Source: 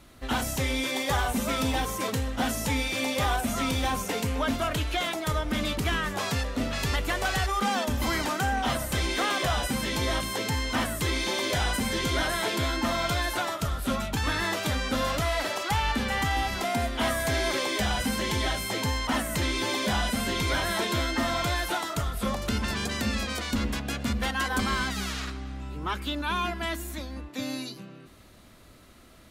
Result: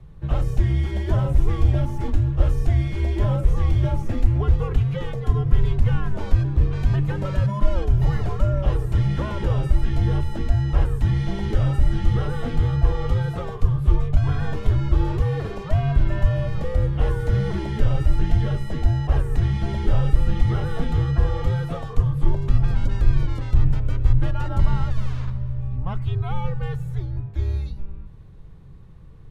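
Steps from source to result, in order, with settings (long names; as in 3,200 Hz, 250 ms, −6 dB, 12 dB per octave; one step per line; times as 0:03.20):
frequency shifter −190 Hz
spectral tilt −4.5 dB per octave
level −5 dB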